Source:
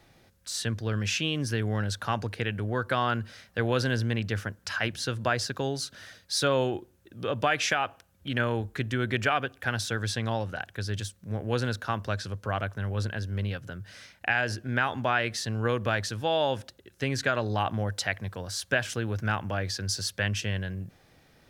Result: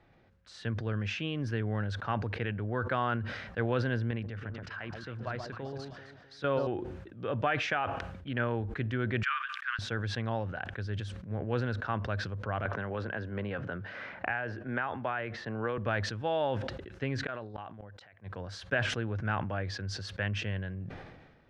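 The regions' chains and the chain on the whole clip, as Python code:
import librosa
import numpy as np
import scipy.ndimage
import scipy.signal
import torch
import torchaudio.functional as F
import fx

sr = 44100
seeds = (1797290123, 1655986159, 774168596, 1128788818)

y = fx.chain(x, sr, fx.high_shelf(hz=10000.0, db=-9.5),
    fx.level_steps(step_db=12),
    fx.echo_alternate(ms=129, hz=1100.0, feedback_pct=61, wet_db=-6.0), at=(4.11, 6.67))
y = fx.chain(y, sr, fx.steep_highpass(hz=1100.0, slope=72),
    fx.high_shelf(hz=11000.0, db=6.5), at=(9.23, 9.79))
y = fx.chain(y, sr, fx.lowpass(hz=1700.0, slope=6),
    fx.low_shelf(hz=240.0, db=-12.0),
    fx.band_squash(depth_pct=100), at=(12.65, 15.78))
y = fx.chain(y, sr, fx.low_shelf(hz=140.0, db=-5.5),
    fx.gate_flip(shuts_db=-21.0, range_db=-27), at=(17.26, 18.3))
y = scipy.signal.sosfilt(scipy.signal.butter(2, 2300.0, 'lowpass', fs=sr, output='sos'), y)
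y = fx.sustainer(y, sr, db_per_s=43.0)
y = F.gain(torch.from_numpy(y), -4.0).numpy()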